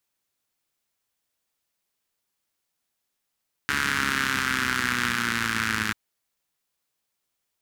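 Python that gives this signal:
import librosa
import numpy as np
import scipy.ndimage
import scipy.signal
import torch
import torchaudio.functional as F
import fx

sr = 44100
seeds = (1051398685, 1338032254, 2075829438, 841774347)

y = fx.engine_four_rev(sr, seeds[0], length_s=2.24, rpm=4300, resonances_hz=(93.0, 210.0, 1500.0), end_rpm=3200)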